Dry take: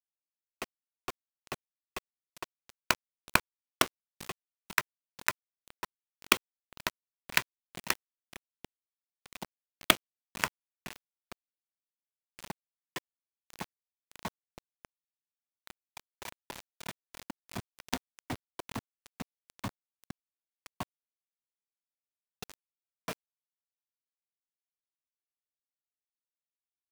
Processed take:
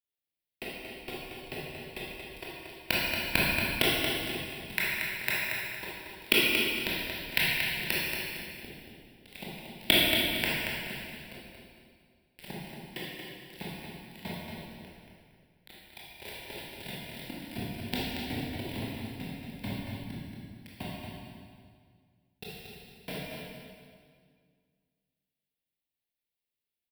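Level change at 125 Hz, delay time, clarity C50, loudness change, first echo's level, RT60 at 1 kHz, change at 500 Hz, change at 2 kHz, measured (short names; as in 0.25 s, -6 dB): +8.5 dB, 0.23 s, -4.0 dB, +4.5 dB, -5.0 dB, 1.9 s, +6.0 dB, +5.5 dB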